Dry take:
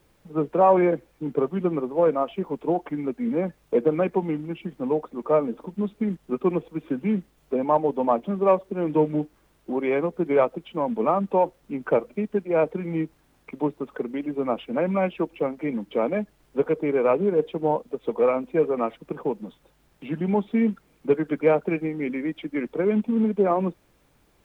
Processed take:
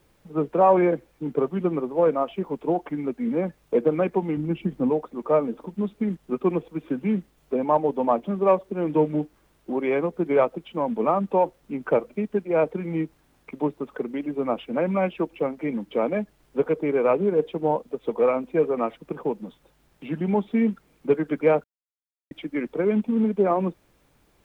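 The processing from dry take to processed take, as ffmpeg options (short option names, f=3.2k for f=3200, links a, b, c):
-filter_complex "[0:a]asettb=1/sr,asplit=3[a][b][c];[a]atrim=end=4.374[d];[b]atrim=start=4.37:end=4.9,asetpts=PTS-STARTPTS,afade=t=in:d=0.004:c=qsin,afade=t=out:st=0.526:d=0.004:c=qsin,lowshelf=f=420:g=8.5[e];[c]atrim=start=4.896[f];[d][e]acrossfade=d=0.004:c1=hsin:c2=qsin[g];[g][f]acrossfade=d=0.004:c1=qsin:c2=hsin,asplit=3[h][i][j];[h]atrim=end=21.64,asetpts=PTS-STARTPTS,afade=t=out:st=21.636:d=0.004:c=hsin[k];[i]atrim=start=21.64:end=22.31,asetpts=PTS-STARTPTS,volume=0[l];[j]atrim=start=22.31,asetpts=PTS-STARTPTS,afade=t=in:d=0.004:c=hsin[m];[k][l][m]concat=n=3:v=0:a=1"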